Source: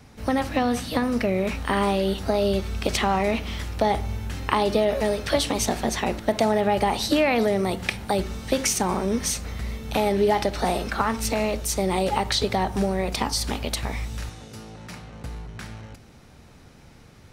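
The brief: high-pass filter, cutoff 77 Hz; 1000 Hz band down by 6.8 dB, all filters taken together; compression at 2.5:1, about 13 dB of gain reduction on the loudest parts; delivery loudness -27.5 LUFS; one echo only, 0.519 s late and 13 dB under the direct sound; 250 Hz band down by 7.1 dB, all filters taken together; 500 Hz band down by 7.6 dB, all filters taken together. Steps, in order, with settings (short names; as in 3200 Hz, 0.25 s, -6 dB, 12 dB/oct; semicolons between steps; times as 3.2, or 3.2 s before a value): HPF 77 Hz; bell 250 Hz -7.5 dB; bell 500 Hz -6 dB; bell 1000 Hz -6 dB; compressor 2.5:1, threshold -43 dBFS; echo 0.519 s -13 dB; gain +13 dB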